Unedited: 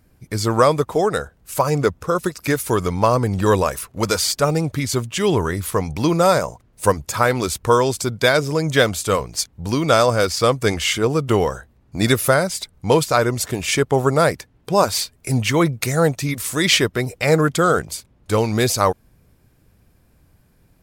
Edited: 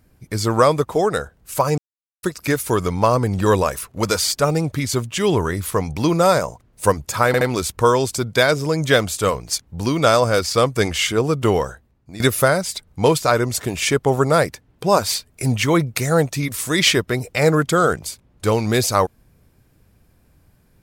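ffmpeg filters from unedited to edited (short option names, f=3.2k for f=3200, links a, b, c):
-filter_complex "[0:a]asplit=6[a][b][c][d][e][f];[a]atrim=end=1.78,asetpts=PTS-STARTPTS,afade=t=out:st=1.776:d=0.004:c=hsin[g];[b]atrim=start=1.78:end=2.23,asetpts=PTS-STARTPTS,volume=0[h];[c]atrim=start=2.23:end=7.342,asetpts=PTS-STARTPTS,afade=t=in:d=0.004:c=hsin[i];[d]atrim=start=7.268:end=7.342[j];[e]atrim=start=7.268:end=12.06,asetpts=PTS-STARTPTS,afade=t=out:st=4.212:d=0.58:silence=0.105925[k];[f]atrim=start=12.06,asetpts=PTS-STARTPTS,afade=t=in:d=0.004:c=hsin:silence=0.105925[l];[g][h][i]concat=n=3:v=0:a=1[m];[m][j]acrossfade=d=0.004:c1=hsin:c2=hsin[n];[k][l]concat=n=2:v=0:a=1[o];[n][o]acrossfade=d=0.004:c1=hsin:c2=hsin"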